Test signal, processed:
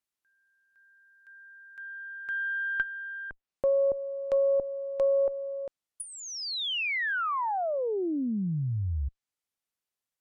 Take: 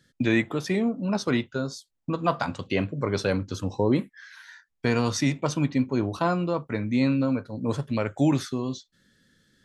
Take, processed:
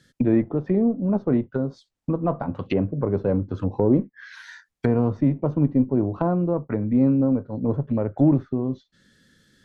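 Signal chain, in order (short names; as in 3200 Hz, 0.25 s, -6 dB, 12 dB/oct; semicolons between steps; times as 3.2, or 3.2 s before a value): added harmonics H 6 -27 dB, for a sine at -9 dBFS; treble ducked by the level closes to 600 Hz, closed at -24.5 dBFS; gain +4.5 dB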